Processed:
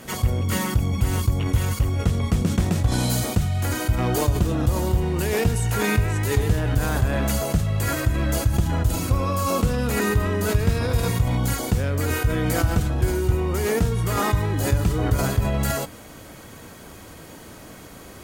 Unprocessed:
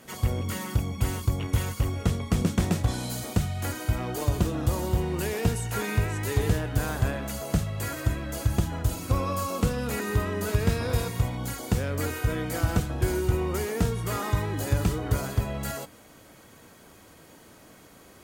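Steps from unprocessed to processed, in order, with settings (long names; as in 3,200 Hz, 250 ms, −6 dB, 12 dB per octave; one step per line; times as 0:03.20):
low-shelf EQ 110 Hz +6.5 dB
in parallel at −0.5 dB: compressor whose output falls as the input rises −30 dBFS, ratio −0.5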